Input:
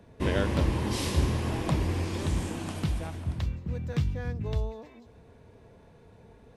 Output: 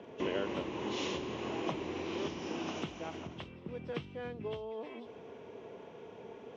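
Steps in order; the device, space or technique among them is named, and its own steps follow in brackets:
hearing aid with frequency lowering (hearing-aid frequency compression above 2,600 Hz 1.5 to 1; downward compressor 3 to 1, threshold −41 dBFS, peak gain reduction 16 dB; loudspeaker in its box 270–6,400 Hz, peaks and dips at 390 Hz +5 dB, 1,700 Hz −5 dB, 2,900 Hz +5 dB, 4,500 Hz −8 dB)
level +7 dB

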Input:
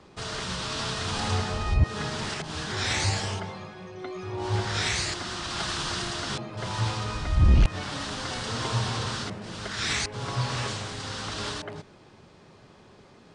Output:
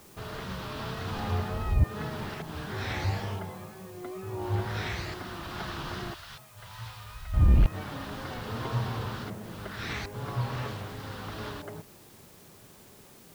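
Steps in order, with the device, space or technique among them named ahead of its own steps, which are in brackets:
cassette deck with a dirty head (head-to-tape spacing loss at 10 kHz 27 dB; tape wow and flutter; white noise bed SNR 25 dB)
0:06.14–0:07.34: guitar amp tone stack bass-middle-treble 10-0-10
level −1.5 dB

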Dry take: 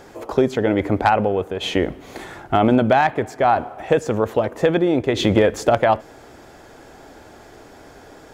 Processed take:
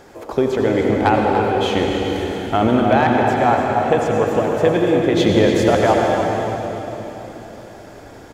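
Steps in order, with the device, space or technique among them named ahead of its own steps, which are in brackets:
cave (single-tap delay 292 ms −9.5 dB; convolution reverb RT60 3.9 s, pre-delay 74 ms, DRR 0 dB)
level −1 dB

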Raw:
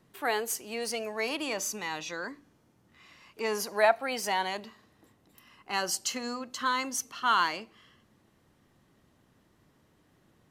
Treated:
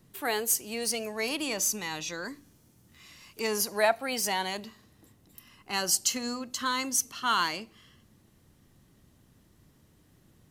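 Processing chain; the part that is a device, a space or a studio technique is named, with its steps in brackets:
smiley-face EQ (low-shelf EQ 130 Hz +7 dB; parametric band 1,000 Hz −5.5 dB 3 octaves; high-shelf EQ 6,300 Hz +7 dB)
0:02.25–0:03.47: high-shelf EQ 4,000 Hz +6.5 dB
level +3 dB

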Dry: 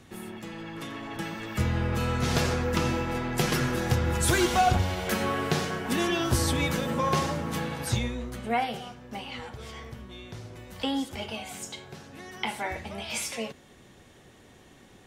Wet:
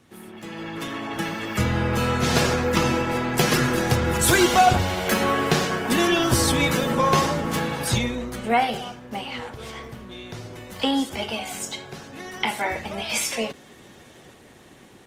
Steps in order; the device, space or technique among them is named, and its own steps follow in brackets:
video call (high-pass filter 140 Hz 6 dB per octave; automatic gain control gain up to 9 dB; level −1.5 dB; Opus 20 kbit/s 48,000 Hz)

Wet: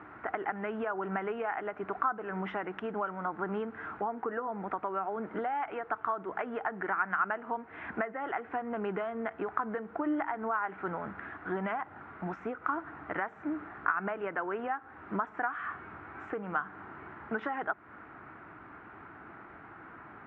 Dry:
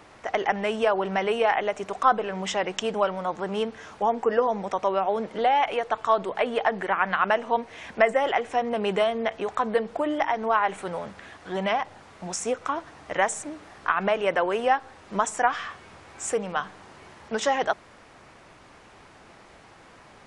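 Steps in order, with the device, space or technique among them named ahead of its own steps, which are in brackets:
bass amplifier (downward compressor 5 to 1, threshold −31 dBFS, peak gain reduction 15.5 dB; loudspeaker in its box 66–2,000 Hz, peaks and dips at 310 Hz +6 dB, 540 Hz −9 dB, 1,400 Hz +9 dB)

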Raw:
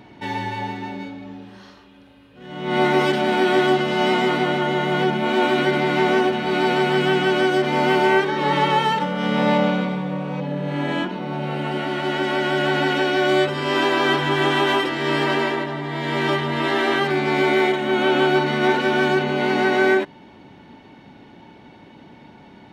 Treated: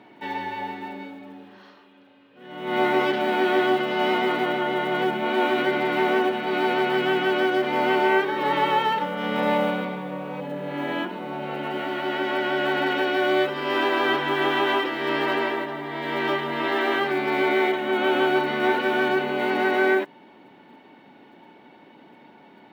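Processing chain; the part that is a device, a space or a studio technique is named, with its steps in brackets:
early digital voice recorder (band-pass filter 260–3,500 Hz; one scale factor per block 7 bits)
level −2.5 dB

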